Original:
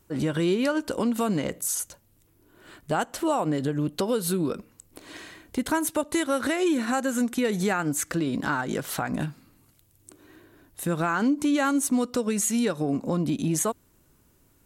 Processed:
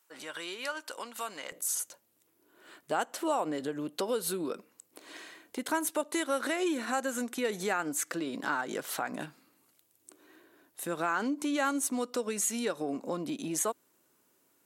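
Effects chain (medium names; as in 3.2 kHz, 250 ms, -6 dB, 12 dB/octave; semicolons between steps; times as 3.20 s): high-pass 950 Hz 12 dB/octave, from 1.52 s 340 Hz; trim -4 dB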